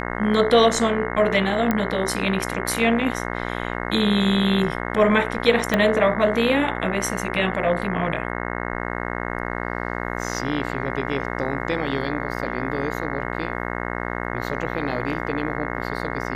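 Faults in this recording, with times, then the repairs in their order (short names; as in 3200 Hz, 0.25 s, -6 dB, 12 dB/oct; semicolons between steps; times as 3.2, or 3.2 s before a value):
buzz 60 Hz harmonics 36 -28 dBFS
1.71 pop -8 dBFS
5.74 pop -7 dBFS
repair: de-click; de-hum 60 Hz, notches 36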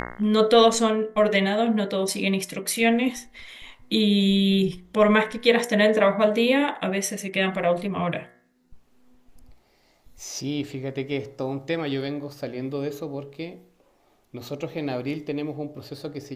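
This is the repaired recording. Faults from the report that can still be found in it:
5.74 pop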